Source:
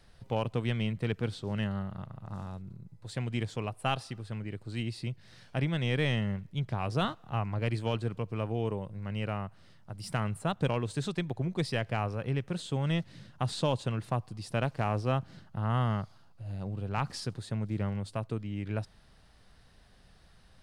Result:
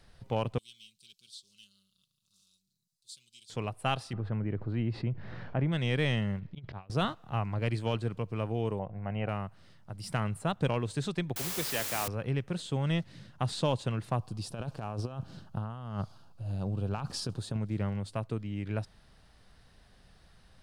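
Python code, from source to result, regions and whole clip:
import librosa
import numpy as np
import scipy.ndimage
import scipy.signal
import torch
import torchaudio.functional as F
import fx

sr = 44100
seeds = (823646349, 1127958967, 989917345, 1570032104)

y = fx.chain(x, sr, fx.cheby2_highpass(hz=2000.0, order=4, stop_db=40),
    fx.comb(ms=5.3, depth=0.56), at=(0.58, 3.5))
y = fx.chain(y, sr, fx.lowpass(hz=1400.0, slope=12),
    fx.env_flatten(amount_pct=50), at=(4.13, 5.72))
y = fx.chain(y, sr, fx.lowpass(hz=4500.0, slope=24),
    fx.auto_swell(attack_ms=156.0),
    fx.over_compress(threshold_db=-43.0, ratio=-0.5), at=(6.39, 6.9))
y = fx.chain(y, sr, fx.lowpass(hz=2700.0, slope=24),
    fx.peak_eq(hz=720.0, db=14.5, octaves=0.46), at=(8.79, 9.29))
y = fx.chain(y, sr, fx.highpass(hz=120.0, slope=24),
    fx.low_shelf(hz=260.0, db=-12.0),
    fx.quant_dither(seeds[0], bits=6, dither='triangular'), at=(11.36, 12.08))
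y = fx.chain(y, sr, fx.over_compress(threshold_db=-33.0, ratio=-0.5),
    fx.peak_eq(hz=2000.0, db=-11.5, octaves=0.41), at=(14.19, 17.57))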